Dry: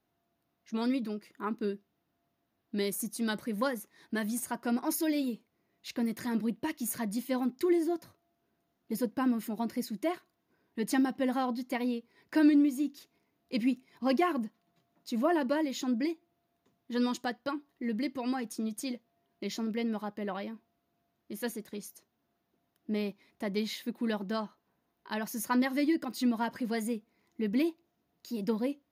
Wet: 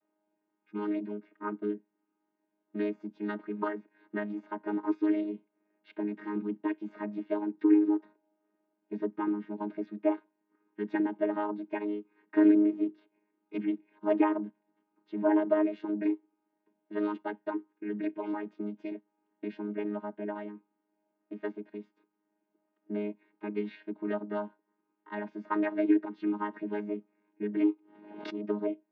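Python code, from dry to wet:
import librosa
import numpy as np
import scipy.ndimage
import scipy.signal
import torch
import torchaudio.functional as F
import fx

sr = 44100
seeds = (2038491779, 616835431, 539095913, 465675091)

y = fx.chord_vocoder(x, sr, chord='bare fifth', root=56)
y = scipy.signal.sosfilt(scipy.signal.butter(4, 2700.0, 'lowpass', fs=sr, output='sos'), y)
y = fx.peak_eq(y, sr, hz=190.0, db=-13.0, octaves=0.78)
y = fx.pre_swell(y, sr, db_per_s=56.0, at=(27.67, 28.31), fade=0.02)
y = y * 10.0 ** (5.5 / 20.0)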